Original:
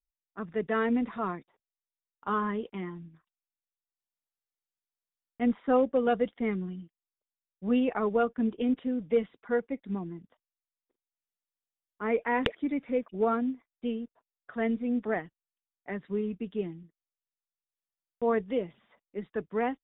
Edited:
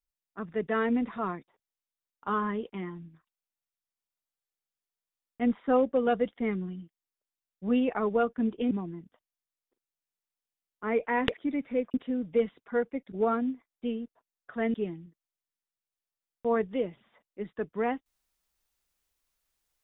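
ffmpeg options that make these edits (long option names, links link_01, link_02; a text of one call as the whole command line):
ffmpeg -i in.wav -filter_complex "[0:a]asplit=5[link_01][link_02][link_03][link_04][link_05];[link_01]atrim=end=8.712[link_06];[link_02]atrim=start=9.888:end=13.122[link_07];[link_03]atrim=start=8.708:end=9.892[link_08];[link_04]atrim=start=13.118:end=14.742[link_09];[link_05]atrim=start=16.508[link_10];[link_06][link_07]acrossfade=duration=0.004:curve1=hsin:curve2=hsin[link_11];[link_11][link_08]acrossfade=duration=0.004:curve1=hsin:curve2=hsin[link_12];[link_12][link_09]acrossfade=duration=0.004:curve1=hsin:curve2=hsin[link_13];[link_13][link_10]acrossfade=duration=0.004:curve1=hsin:curve2=hsin" out.wav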